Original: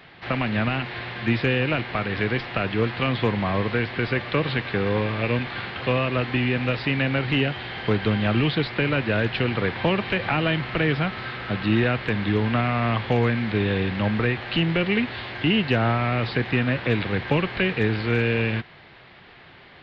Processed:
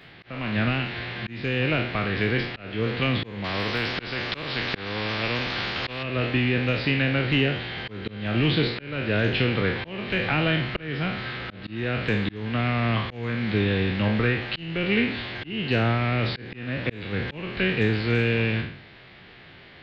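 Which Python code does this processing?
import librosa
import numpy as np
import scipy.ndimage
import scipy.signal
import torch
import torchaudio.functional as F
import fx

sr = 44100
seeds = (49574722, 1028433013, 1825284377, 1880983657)

y = fx.spec_trails(x, sr, decay_s=0.59)
y = fx.peak_eq(y, sr, hz=940.0, db=-6.0, octaves=1.3)
y = fx.auto_swell(y, sr, attack_ms=381.0)
y = fx.spectral_comp(y, sr, ratio=2.0, at=(3.44, 6.03))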